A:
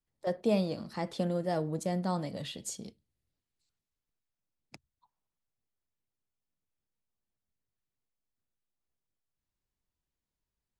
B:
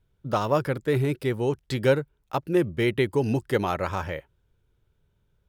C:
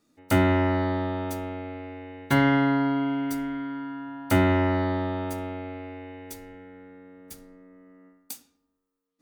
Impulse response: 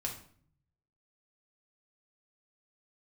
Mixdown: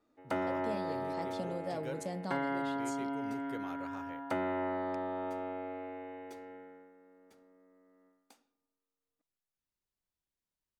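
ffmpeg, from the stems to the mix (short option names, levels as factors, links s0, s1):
-filter_complex "[0:a]adelay=200,volume=0.708[s0];[1:a]volume=0.126[s1];[2:a]bandpass=f=680:t=q:w=0.71:csg=0,afade=t=out:st=6.55:d=0.38:silence=0.375837[s2];[s0][s1][s2]amix=inputs=3:normalize=0,lowshelf=f=190:g=-6,acompressor=threshold=0.0178:ratio=2.5"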